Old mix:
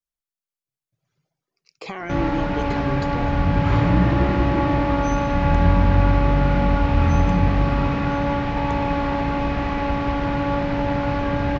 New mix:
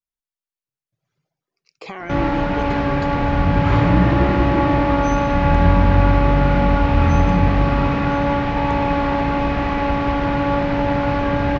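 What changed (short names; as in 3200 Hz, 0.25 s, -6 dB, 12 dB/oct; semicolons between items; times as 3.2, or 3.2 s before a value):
background +4.0 dB; master: add tone controls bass -2 dB, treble -3 dB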